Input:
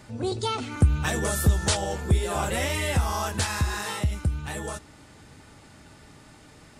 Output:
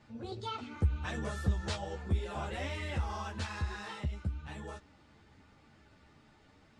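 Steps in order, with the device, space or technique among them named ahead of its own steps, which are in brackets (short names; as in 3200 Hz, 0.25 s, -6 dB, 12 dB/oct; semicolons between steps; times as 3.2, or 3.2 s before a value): string-machine ensemble chorus (ensemble effect; LPF 4400 Hz 12 dB/oct); gain -8 dB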